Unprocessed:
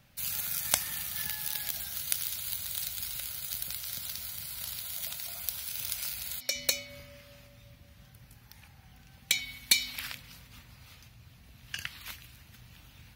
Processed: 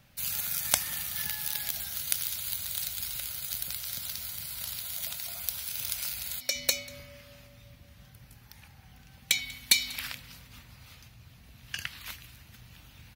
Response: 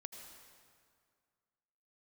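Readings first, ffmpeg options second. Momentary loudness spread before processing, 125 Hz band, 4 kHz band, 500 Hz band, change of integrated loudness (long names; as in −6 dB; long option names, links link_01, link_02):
15 LU, +1.5 dB, +1.5 dB, +1.5 dB, +1.5 dB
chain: -af "aecho=1:1:191:0.075,volume=1.5dB"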